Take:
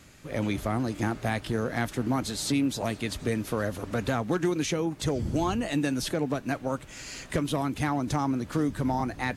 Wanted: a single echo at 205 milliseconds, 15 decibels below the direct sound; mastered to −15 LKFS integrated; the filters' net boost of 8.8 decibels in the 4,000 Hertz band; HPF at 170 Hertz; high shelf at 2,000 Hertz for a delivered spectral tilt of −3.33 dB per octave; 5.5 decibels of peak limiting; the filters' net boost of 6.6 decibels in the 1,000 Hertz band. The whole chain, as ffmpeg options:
ffmpeg -i in.wav -af "highpass=170,equalizer=frequency=1000:width_type=o:gain=7,highshelf=frequency=2000:gain=6,equalizer=frequency=4000:width_type=o:gain=4.5,alimiter=limit=-17dB:level=0:latency=1,aecho=1:1:205:0.178,volume=13dB" out.wav

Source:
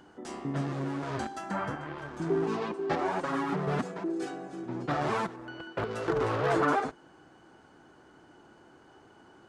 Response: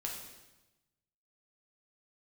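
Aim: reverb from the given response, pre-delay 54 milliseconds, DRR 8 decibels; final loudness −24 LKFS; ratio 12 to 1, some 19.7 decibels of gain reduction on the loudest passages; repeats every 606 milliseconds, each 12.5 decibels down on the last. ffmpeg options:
-filter_complex "[0:a]acompressor=threshold=-43dB:ratio=12,aecho=1:1:606|1212|1818:0.237|0.0569|0.0137,asplit=2[link_01][link_02];[1:a]atrim=start_sample=2205,adelay=54[link_03];[link_02][link_03]afir=irnorm=-1:irlink=0,volume=-8.5dB[link_04];[link_01][link_04]amix=inputs=2:normalize=0,volume=23dB"

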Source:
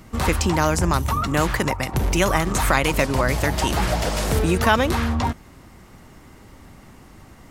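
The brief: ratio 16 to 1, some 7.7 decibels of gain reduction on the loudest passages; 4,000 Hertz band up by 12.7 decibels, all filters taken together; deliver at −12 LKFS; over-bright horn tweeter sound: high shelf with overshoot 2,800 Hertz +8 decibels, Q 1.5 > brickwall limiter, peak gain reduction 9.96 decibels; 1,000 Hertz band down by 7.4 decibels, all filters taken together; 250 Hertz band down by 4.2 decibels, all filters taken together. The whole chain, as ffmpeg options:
ffmpeg -i in.wav -af "equalizer=frequency=250:width_type=o:gain=-5.5,equalizer=frequency=1000:width_type=o:gain=-8.5,equalizer=frequency=4000:width_type=o:gain=6,acompressor=threshold=-24dB:ratio=16,highshelf=frequency=2800:width_type=q:width=1.5:gain=8,volume=15.5dB,alimiter=limit=-1dB:level=0:latency=1" out.wav

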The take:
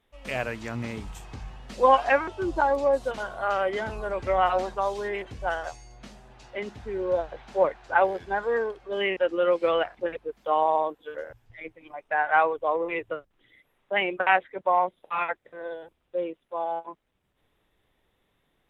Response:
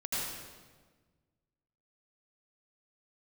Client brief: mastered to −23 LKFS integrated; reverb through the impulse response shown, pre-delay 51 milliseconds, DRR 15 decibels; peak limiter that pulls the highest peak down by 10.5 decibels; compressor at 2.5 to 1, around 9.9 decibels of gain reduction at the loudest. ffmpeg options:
-filter_complex "[0:a]acompressor=threshold=-29dB:ratio=2.5,alimiter=level_in=0.5dB:limit=-24dB:level=0:latency=1,volume=-0.5dB,asplit=2[link_01][link_02];[1:a]atrim=start_sample=2205,adelay=51[link_03];[link_02][link_03]afir=irnorm=-1:irlink=0,volume=-20.5dB[link_04];[link_01][link_04]amix=inputs=2:normalize=0,volume=12.5dB"

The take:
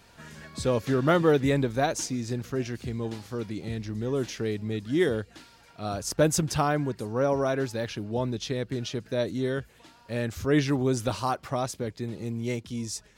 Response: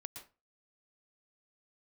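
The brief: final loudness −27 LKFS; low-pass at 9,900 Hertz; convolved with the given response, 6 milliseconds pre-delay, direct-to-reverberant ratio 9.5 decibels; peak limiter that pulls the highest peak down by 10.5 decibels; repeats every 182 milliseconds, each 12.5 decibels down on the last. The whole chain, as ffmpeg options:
-filter_complex "[0:a]lowpass=9900,alimiter=limit=-20.5dB:level=0:latency=1,aecho=1:1:182|364|546:0.237|0.0569|0.0137,asplit=2[link_01][link_02];[1:a]atrim=start_sample=2205,adelay=6[link_03];[link_02][link_03]afir=irnorm=-1:irlink=0,volume=-5.5dB[link_04];[link_01][link_04]amix=inputs=2:normalize=0,volume=4dB"

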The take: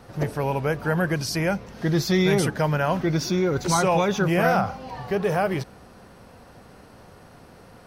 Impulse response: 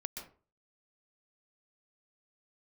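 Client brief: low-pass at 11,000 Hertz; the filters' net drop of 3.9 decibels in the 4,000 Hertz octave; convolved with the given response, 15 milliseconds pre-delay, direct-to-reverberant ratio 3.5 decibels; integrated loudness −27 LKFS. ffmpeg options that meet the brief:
-filter_complex "[0:a]lowpass=11000,equalizer=frequency=4000:width_type=o:gain=-5,asplit=2[link_01][link_02];[1:a]atrim=start_sample=2205,adelay=15[link_03];[link_02][link_03]afir=irnorm=-1:irlink=0,volume=-2.5dB[link_04];[link_01][link_04]amix=inputs=2:normalize=0,volume=-4.5dB"

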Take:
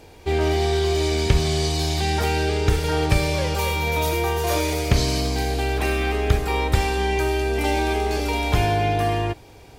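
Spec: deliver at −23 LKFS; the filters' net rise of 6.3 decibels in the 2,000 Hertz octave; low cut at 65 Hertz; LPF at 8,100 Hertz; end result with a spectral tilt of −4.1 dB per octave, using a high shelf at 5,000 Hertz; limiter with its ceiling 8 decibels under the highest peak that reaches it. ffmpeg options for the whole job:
ffmpeg -i in.wav -af "highpass=65,lowpass=8100,equalizer=frequency=2000:width_type=o:gain=7,highshelf=frequency=5000:gain=5,volume=-1dB,alimiter=limit=-13.5dB:level=0:latency=1" out.wav

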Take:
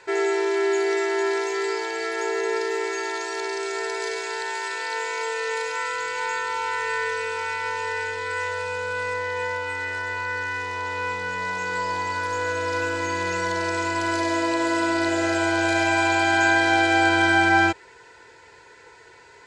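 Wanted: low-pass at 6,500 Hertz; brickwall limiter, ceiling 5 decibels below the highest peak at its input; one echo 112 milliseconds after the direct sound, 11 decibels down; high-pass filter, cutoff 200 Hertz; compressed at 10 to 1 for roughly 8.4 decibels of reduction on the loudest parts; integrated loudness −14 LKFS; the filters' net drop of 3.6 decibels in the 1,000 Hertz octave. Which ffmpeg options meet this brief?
ffmpeg -i in.wav -af "highpass=200,lowpass=6500,equalizer=frequency=1000:width_type=o:gain=-4.5,acompressor=threshold=-25dB:ratio=10,alimiter=limit=-22dB:level=0:latency=1,aecho=1:1:112:0.282,volume=16dB" out.wav

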